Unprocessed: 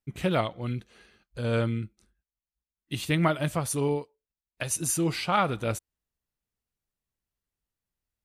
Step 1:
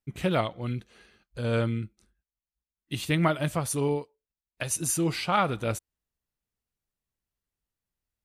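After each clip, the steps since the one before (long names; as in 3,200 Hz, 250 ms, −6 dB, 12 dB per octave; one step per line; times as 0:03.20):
no processing that can be heard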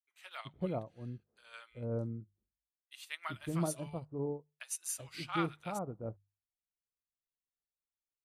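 mains-hum notches 50/100/150 Hz
multiband delay without the direct sound highs, lows 380 ms, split 920 Hz
expander for the loud parts 1.5 to 1, over −45 dBFS
level −7.5 dB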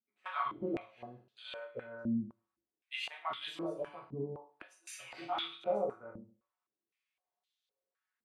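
downward compressor 4 to 1, threshold −44 dBFS, peak gain reduction 13.5 dB
convolution reverb RT60 0.40 s, pre-delay 5 ms, DRR −5 dB
band-pass on a step sequencer 3.9 Hz 220–3,500 Hz
level +14.5 dB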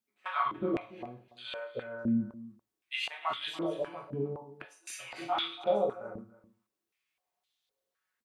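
single-tap delay 286 ms −18 dB
level +5 dB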